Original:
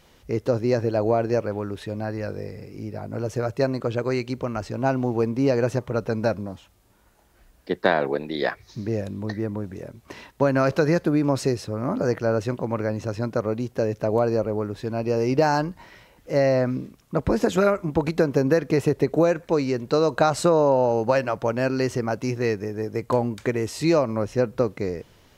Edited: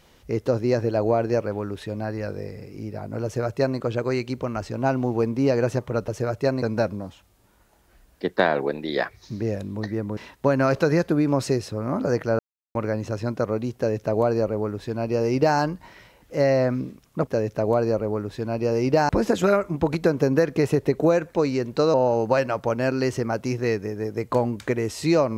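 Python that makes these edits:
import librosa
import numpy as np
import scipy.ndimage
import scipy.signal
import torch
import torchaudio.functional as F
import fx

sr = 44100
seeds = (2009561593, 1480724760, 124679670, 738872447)

y = fx.edit(x, sr, fx.duplicate(start_s=3.24, length_s=0.54, to_s=6.08),
    fx.cut(start_s=9.63, length_s=0.5),
    fx.silence(start_s=12.35, length_s=0.36),
    fx.duplicate(start_s=13.72, length_s=1.82, to_s=17.23),
    fx.cut(start_s=20.08, length_s=0.64), tone=tone)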